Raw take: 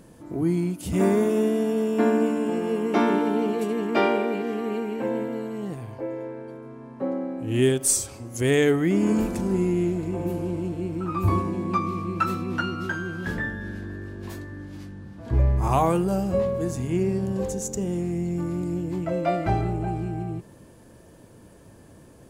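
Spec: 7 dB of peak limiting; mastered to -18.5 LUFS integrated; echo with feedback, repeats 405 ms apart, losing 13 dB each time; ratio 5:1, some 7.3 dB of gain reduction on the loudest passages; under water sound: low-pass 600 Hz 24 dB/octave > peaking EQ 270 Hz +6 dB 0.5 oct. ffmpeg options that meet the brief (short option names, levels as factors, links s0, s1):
-af "acompressor=threshold=0.0631:ratio=5,alimiter=limit=0.0841:level=0:latency=1,lowpass=f=600:w=0.5412,lowpass=f=600:w=1.3066,equalizer=f=270:t=o:w=0.5:g=6,aecho=1:1:405|810|1215:0.224|0.0493|0.0108,volume=3.55"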